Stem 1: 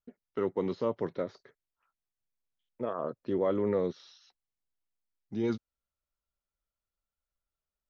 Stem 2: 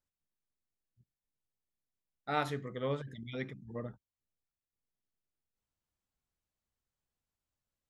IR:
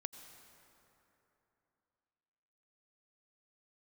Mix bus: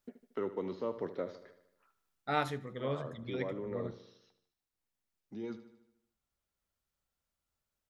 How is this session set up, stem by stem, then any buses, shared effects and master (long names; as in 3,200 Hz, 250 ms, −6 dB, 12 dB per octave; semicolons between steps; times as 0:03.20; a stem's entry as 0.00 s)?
−8.5 dB, 0.00 s, no send, echo send −13 dB, high-pass filter 46 Hz; parametric band 130 Hz −8.5 dB 0.59 octaves; multiband upward and downward compressor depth 40%
+1.0 dB, 0.00 s, no send, echo send −22.5 dB, no processing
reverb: not used
echo: repeating echo 76 ms, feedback 55%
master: speech leveller within 5 dB 0.5 s